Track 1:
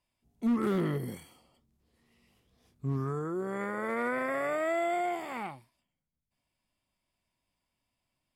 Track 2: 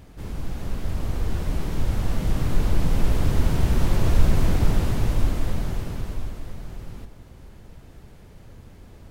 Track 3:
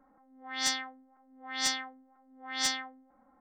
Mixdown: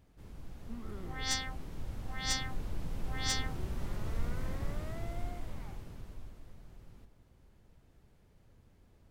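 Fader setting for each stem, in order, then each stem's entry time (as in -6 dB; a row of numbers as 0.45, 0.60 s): -19.0, -17.5, -4.5 dB; 0.25, 0.00, 0.65 s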